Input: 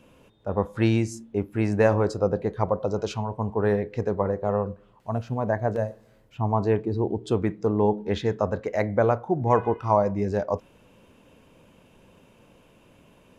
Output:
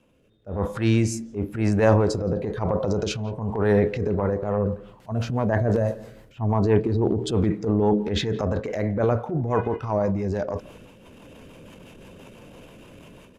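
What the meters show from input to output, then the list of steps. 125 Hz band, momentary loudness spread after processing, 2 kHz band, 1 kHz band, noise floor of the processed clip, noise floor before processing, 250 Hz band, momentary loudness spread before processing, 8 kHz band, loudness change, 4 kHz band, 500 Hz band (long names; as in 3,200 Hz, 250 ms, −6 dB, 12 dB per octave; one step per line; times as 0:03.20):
+3.5 dB, 9 LU, +1.0 dB, −2.5 dB, −52 dBFS, −57 dBFS, +3.0 dB, 8 LU, can't be measured, +1.5 dB, +7.0 dB, +0.5 dB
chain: automatic gain control gain up to 16 dB
rotating-speaker cabinet horn 1 Hz, later 6 Hz, at 0:03.82
transient designer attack −9 dB, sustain +8 dB
far-end echo of a speakerphone 170 ms, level −20 dB
level −4.5 dB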